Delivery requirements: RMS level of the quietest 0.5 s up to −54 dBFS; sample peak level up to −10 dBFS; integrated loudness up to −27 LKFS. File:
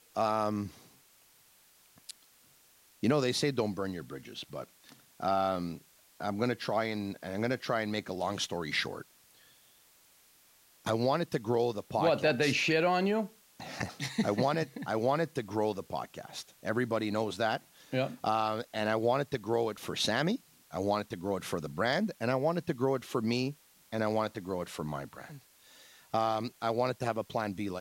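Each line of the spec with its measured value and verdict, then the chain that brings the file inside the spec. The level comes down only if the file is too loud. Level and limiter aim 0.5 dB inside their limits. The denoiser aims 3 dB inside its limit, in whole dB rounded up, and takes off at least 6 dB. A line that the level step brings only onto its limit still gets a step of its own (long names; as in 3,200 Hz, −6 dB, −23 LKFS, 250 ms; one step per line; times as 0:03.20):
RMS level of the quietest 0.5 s −63 dBFS: in spec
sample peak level −15.5 dBFS: in spec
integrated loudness −32.5 LKFS: in spec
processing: no processing needed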